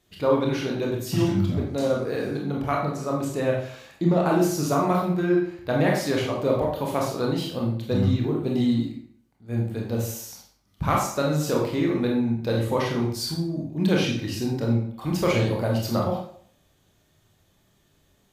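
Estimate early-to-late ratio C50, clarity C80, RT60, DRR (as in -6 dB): 3.5 dB, 7.0 dB, 0.55 s, -2.0 dB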